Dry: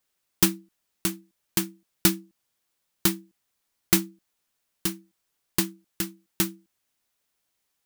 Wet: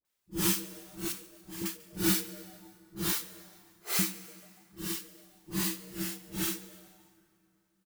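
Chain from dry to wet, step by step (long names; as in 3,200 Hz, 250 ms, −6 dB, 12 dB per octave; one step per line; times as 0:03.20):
random phases in long frames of 200 ms
0:01.07–0:01.61: downward compressor 4 to 1, threshold −37 dBFS, peak gain reduction 12.5 dB
0:03.12–0:03.99: Butterworth high-pass 390 Hz 96 dB per octave
all-pass dispersion highs, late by 50 ms, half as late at 810 Hz
echo with shifted repeats 144 ms, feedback 58%, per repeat +140 Hz, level −22 dB
convolution reverb RT60 3.0 s, pre-delay 118 ms, DRR 18 dB
level −4.5 dB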